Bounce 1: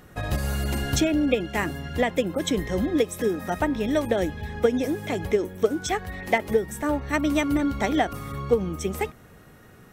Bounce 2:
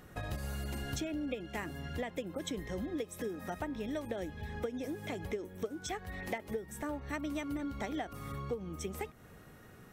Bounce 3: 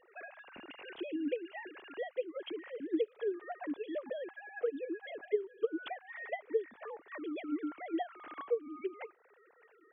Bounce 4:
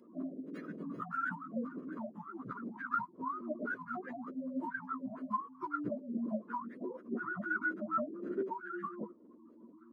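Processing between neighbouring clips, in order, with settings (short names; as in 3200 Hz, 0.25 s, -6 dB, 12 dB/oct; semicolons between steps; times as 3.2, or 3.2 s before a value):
compressor 3:1, threshold -33 dBFS, peak gain reduction 14 dB; gain -5 dB
sine-wave speech
spectrum mirrored in octaves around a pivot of 660 Hz; fixed phaser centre 340 Hz, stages 4; gain +10.5 dB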